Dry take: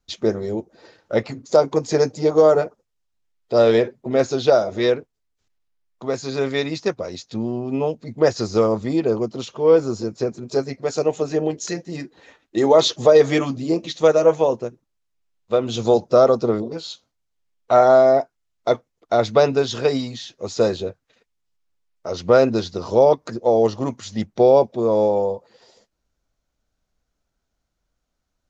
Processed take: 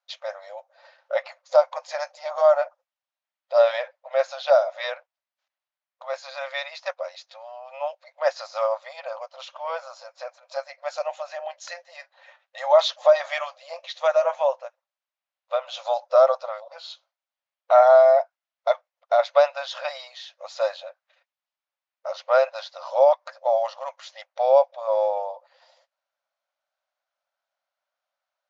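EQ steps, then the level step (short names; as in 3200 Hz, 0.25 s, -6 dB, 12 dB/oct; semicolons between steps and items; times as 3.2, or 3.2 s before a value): brick-wall FIR high-pass 520 Hz; air absorption 170 m; 0.0 dB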